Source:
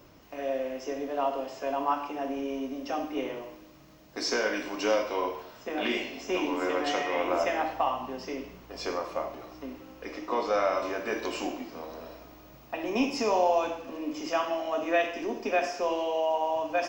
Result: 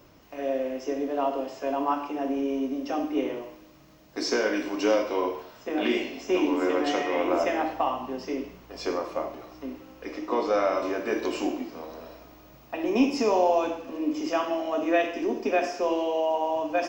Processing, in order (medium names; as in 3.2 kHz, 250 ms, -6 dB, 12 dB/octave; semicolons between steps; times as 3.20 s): dynamic bell 320 Hz, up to +7 dB, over -43 dBFS, Q 1.2